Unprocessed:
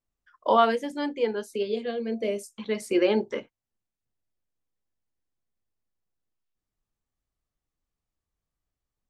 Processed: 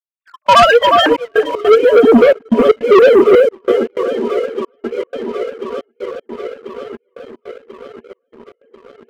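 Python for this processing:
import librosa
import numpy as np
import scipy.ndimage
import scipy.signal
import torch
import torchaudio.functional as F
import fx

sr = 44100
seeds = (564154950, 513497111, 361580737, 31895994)

y = fx.sine_speech(x, sr)
y = fx.tilt_eq(y, sr, slope=fx.steps((0.0, 4.0), (1.37, -2.0)))
y = fx.echo_tape(y, sr, ms=365, feedback_pct=28, wet_db=-8.5, lp_hz=1000.0, drive_db=8.0, wow_cents=35)
y = fx.dynamic_eq(y, sr, hz=260.0, q=2.7, threshold_db=-41.0, ratio=4.0, max_db=5)
y = fx.fold_sine(y, sr, drive_db=7, ceiling_db=-8.5)
y = fx.rider(y, sr, range_db=10, speed_s=0.5)
y = fx.echo_swing(y, sr, ms=1040, ratio=1.5, feedback_pct=63, wet_db=-15.0)
y = fx.step_gate(y, sr, bpm=155, pattern='..xx.xxxxxxx', floor_db=-24.0, edge_ms=4.5)
y = fx.leveller(y, sr, passes=2)
y = y * librosa.db_to_amplitude(4.5)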